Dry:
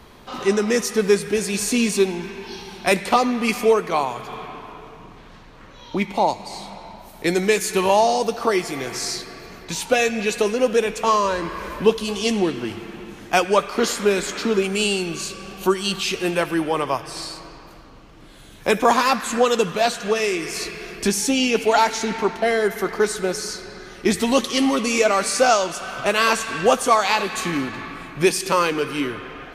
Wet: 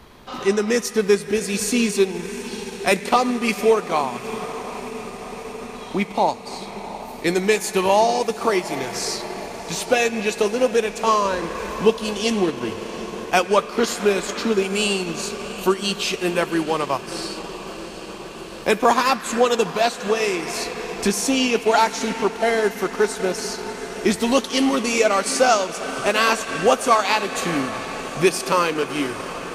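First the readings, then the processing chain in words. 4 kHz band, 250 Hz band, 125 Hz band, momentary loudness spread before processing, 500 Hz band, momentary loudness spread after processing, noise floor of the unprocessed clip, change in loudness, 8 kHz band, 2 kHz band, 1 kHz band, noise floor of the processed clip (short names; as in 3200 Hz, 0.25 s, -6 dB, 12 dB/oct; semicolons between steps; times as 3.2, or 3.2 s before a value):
0.0 dB, 0.0 dB, -0.5 dB, 14 LU, 0.0 dB, 13 LU, -44 dBFS, -0.5 dB, -0.5 dB, 0.0 dB, 0.0 dB, -35 dBFS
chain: diffused feedback echo 0.745 s, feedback 77%, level -14 dB; transient shaper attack 0 dB, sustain -4 dB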